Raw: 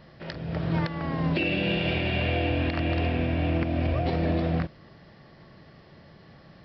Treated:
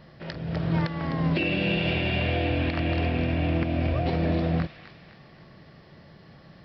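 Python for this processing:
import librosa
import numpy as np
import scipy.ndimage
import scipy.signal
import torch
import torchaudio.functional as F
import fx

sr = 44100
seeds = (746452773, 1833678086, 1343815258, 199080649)

p1 = fx.peak_eq(x, sr, hz=160.0, db=2.0, octaves=0.77)
y = p1 + fx.echo_wet_highpass(p1, sr, ms=255, feedback_pct=48, hz=1700.0, wet_db=-7.5, dry=0)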